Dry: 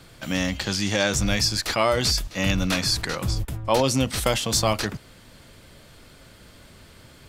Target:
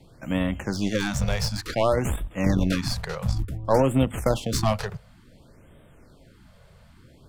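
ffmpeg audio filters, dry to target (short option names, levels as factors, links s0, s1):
-filter_complex "[0:a]aeval=exprs='0.562*(cos(1*acos(clip(val(0)/0.562,-1,1)))-cos(1*PI/2))+0.178*(cos(2*acos(clip(val(0)/0.562,-1,1)))-cos(2*PI/2))+0.0447*(cos(7*acos(clip(val(0)/0.562,-1,1)))-cos(7*PI/2))':c=same,tiltshelf=f=1500:g=6,bandreject=f=50:t=h:w=6,bandreject=f=100:t=h:w=6,acrossover=split=590|7000[s0][s1][s2];[s1]asoftclip=type=tanh:threshold=0.133[s3];[s0][s3][s2]amix=inputs=3:normalize=0,afftfilt=real='re*(1-between(b*sr/1024,270*pow(5500/270,0.5+0.5*sin(2*PI*0.56*pts/sr))/1.41,270*pow(5500/270,0.5+0.5*sin(2*PI*0.56*pts/sr))*1.41))':imag='im*(1-between(b*sr/1024,270*pow(5500/270,0.5+0.5*sin(2*PI*0.56*pts/sr))/1.41,270*pow(5500/270,0.5+0.5*sin(2*PI*0.56*pts/sr))*1.41))':win_size=1024:overlap=0.75"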